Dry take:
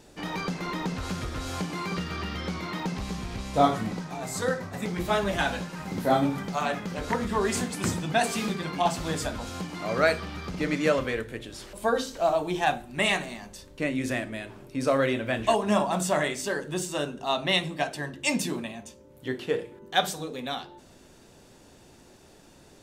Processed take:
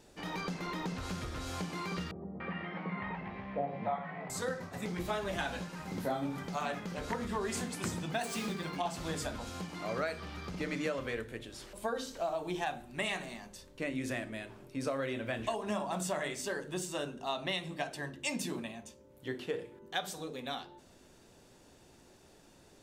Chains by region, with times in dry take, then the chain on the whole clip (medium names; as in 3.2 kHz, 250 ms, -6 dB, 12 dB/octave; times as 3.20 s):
2.11–4.30 s: cabinet simulation 130–2400 Hz, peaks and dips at 180 Hz +8 dB, 300 Hz -6 dB, 560 Hz +4 dB, 810 Hz +5 dB, 1.4 kHz -4 dB, 1.9 kHz +6 dB + doubling 20 ms -8 dB + three bands offset in time mids, lows, highs 30/290 ms, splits 170/640 Hz
8.12–8.77 s: median filter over 3 samples + treble shelf 8.7 kHz +5.5 dB
whole clip: hum notches 50/100/150/200/250/300 Hz; compression 6:1, threshold -25 dBFS; trim -6 dB